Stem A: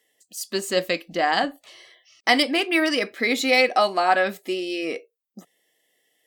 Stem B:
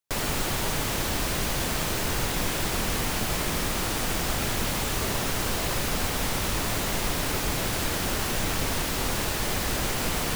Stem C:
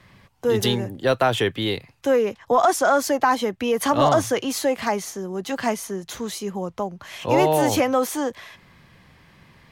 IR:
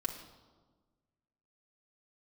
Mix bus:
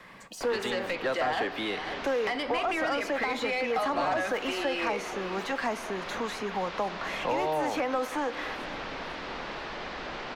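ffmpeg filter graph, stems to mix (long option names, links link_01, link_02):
-filter_complex "[0:a]acompressor=threshold=-28dB:ratio=3,volume=1.5dB,asplit=3[link_01][link_02][link_03];[link_02]volume=-9dB[link_04];[link_03]volume=-16dB[link_05];[1:a]lowpass=frequency=4900:width=0.5412,lowpass=frequency=4900:width=1.3066,adelay=300,volume=-12dB[link_06];[2:a]bandreject=frequency=3100:width=12,acrossover=split=460[link_07][link_08];[link_08]acompressor=threshold=-24dB:ratio=6[link_09];[link_07][link_09]amix=inputs=2:normalize=0,volume=-3dB,asplit=3[link_10][link_11][link_12];[link_11]volume=-11.5dB[link_13];[link_12]volume=-24dB[link_14];[3:a]atrim=start_sample=2205[link_15];[link_04][link_13]amix=inputs=2:normalize=0[link_16];[link_16][link_15]afir=irnorm=-1:irlink=0[link_17];[link_05][link_14]amix=inputs=2:normalize=0,aecho=0:1:501|1002|1503|2004|2505|3006:1|0.4|0.16|0.064|0.0256|0.0102[link_18];[link_01][link_06][link_10][link_17][link_18]amix=inputs=5:normalize=0,equalizer=frequency=95:width_type=o:width=0.58:gain=-11.5,acrossover=split=790|3200[link_19][link_20][link_21];[link_19]acompressor=threshold=-36dB:ratio=4[link_22];[link_20]acompressor=threshold=-35dB:ratio=4[link_23];[link_21]acompressor=threshold=-44dB:ratio=4[link_24];[link_22][link_23][link_24]amix=inputs=3:normalize=0,asplit=2[link_25][link_26];[link_26]highpass=frequency=720:poles=1,volume=16dB,asoftclip=type=tanh:threshold=-16.5dB[link_27];[link_25][link_27]amix=inputs=2:normalize=0,lowpass=frequency=1400:poles=1,volume=-6dB"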